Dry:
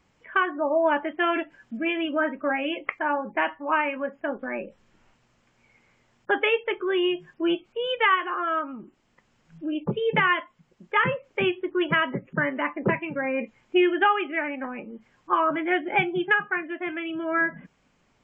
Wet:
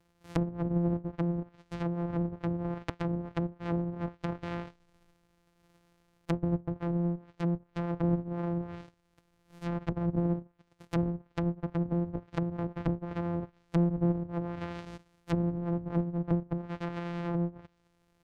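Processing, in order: sorted samples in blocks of 256 samples; low-pass that closes with the level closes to 370 Hz, closed at -21.5 dBFS; loudspeaker Doppler distortion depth 0.17 ms; trim -4.5 dB

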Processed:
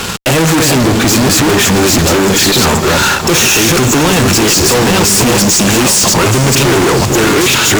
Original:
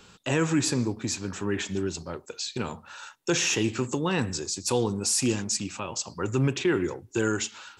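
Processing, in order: chunks repeated in reverse 504 ms, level -2 dB; fuzz box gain 51 dB, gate -54 dBFS; echo that smears into a reverb 477 ms, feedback 60%, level -12 dB; trim +4.5 dB

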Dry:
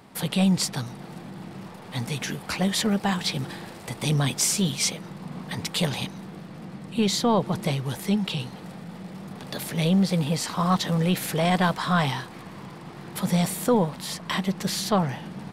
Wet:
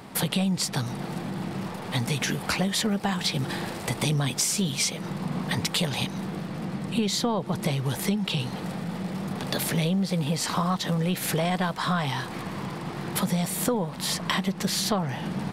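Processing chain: compression 6:1, threshold -30 dBFS, peak gain reduction 13.5 dB; trim +7 dB

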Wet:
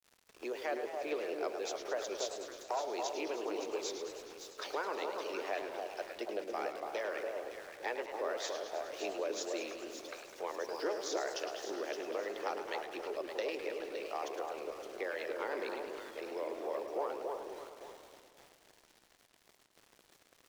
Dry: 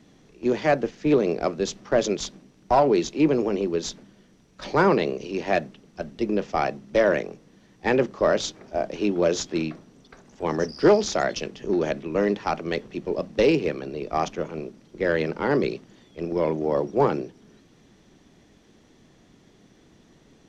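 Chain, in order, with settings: high-pass 400 Hz 24 dB/octave; harmonic-percussive split harmonic -8 dB; compression 2.5:1, threshold -48 dBFS, peak gain reduction 20.5 dB; echo whose repeats swap between lows and highs 283 ms, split 1.1 kHz, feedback 53%, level -3 dB; small samples zeroed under -56.5 dBFS; modulated delay 105 ms, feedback 71%, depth 166 cents, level -9 dB; trim +3.5 dB

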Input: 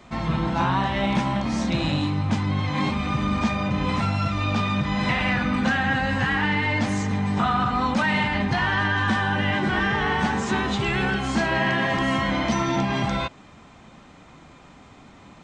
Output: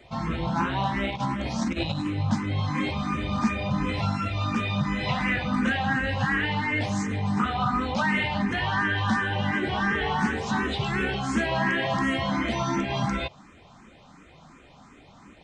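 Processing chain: 1.10–2.06 s: compressor with a negative ratio -25 dBFS, ratio -0.5; barber-pole phaser +2.8 Hz

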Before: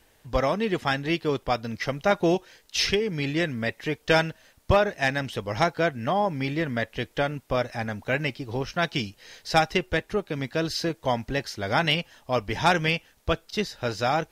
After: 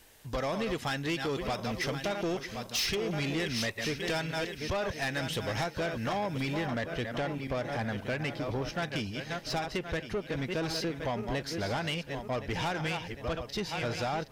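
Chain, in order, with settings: backward echo that repeats 534 ms, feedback 51%, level -10 dB; compression 6:1, threshold -25 dBFS, peak gain reduction 10.5 dB; treble shelf 3.1 kHz +6 dB, from 6.66 s -2.5 dB; saturation -26.5 dBFS, distortion -12 dB

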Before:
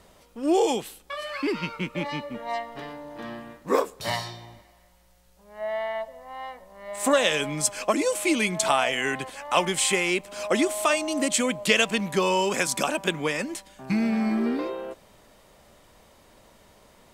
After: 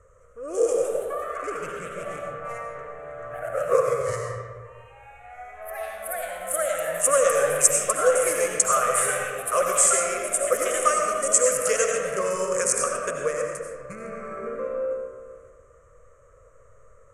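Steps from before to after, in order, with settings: local Wiener filter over 9 samples; FFT filter 110 Hz 0 dB, 230 Hz -25 dB, 340 Hz -19 dB, 500 Hz +7 dB, 840 Hz -24 dB, 1.2 kHz +15 dB, 3.6 kHz -23 dB, 6.5 kHz +6 dB, 9.9 kHz +7 dB, 15 kHz -22 dB; reverberation RT60 1.8 s, pre-delay 50 ms, DRR 1 dB; ever faster or slower copies 236 ms, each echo +2 st, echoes 3, each echo -6 dB; peaking EQ 1.4 kHz -12 dB 1.2 oct; trim +2 dB

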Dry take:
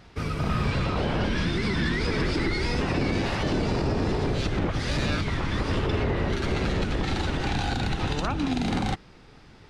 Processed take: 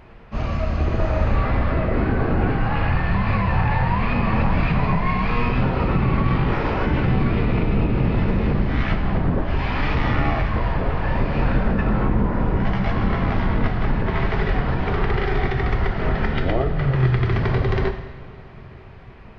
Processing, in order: two-slope reverb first 0.55 s, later 4.5 s, from -21 dB, DRR 5.5 dB; speed mistake 15 ips tape played at 7.5 ips; trim +5.5 dB

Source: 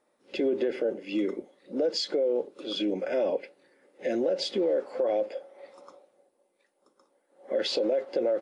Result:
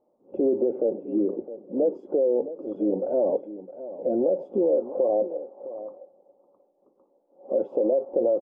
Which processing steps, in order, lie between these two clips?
inverse Chebyshev low-pass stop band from 1.7 kHz, stop band 40 dB; on a send: delay 661 ms -14 dB; on the sum: trim +4 dB

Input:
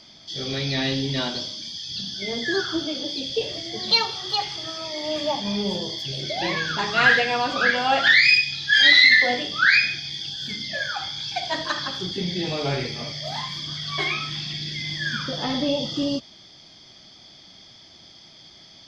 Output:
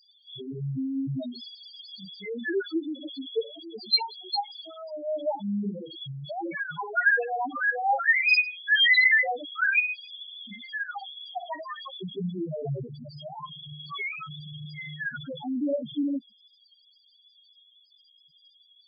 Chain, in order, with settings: bass shelf 69 Hz -6 dB; loudest bins only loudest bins 2

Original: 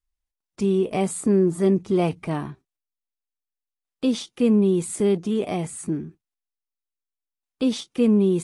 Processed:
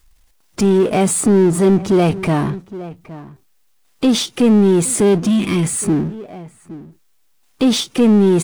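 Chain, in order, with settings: echo from a far wall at 140 m, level -26 dB; spectral replace 5.27–5.64 s, 380–950 Hz; power-law waveshaper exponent 0.7; in parallel at -1.5 dB: peak limiter -19 dBFS, peak gain reduction 9 dB; on the sum: trim +2.5 dB

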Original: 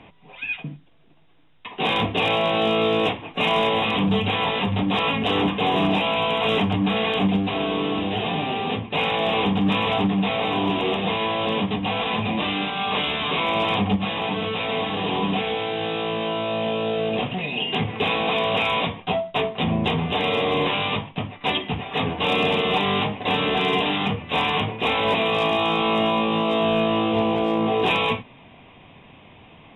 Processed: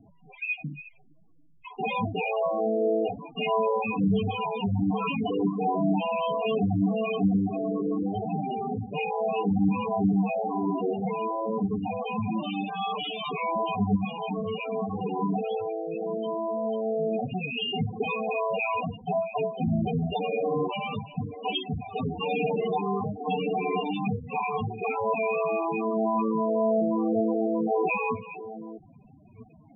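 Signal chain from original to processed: chunks repeated in reverse 654 ms, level -14 dB; loudest bins only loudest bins 8; trim -2 dB

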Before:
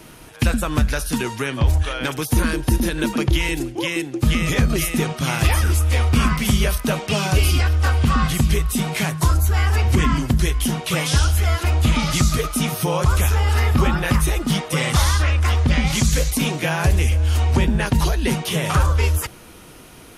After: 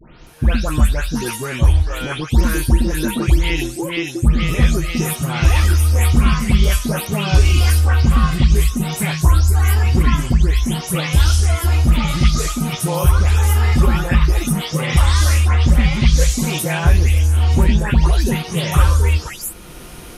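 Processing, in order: delay that grows with frequency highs late, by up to 266 ms; bass shelf 81 Hz +8.5 dB; level rider gain up to 8.5 dB; trim -1 dB

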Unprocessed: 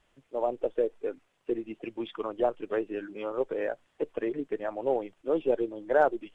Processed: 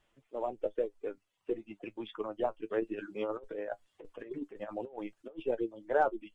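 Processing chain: reverb removal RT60 0.59 s; 2.80–5.43 s: compressor with a negative ratio -35 dBFS, ratio -0.5; flange 0.35 Hz, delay 8.8 ms, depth 1.6 ms, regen +44%

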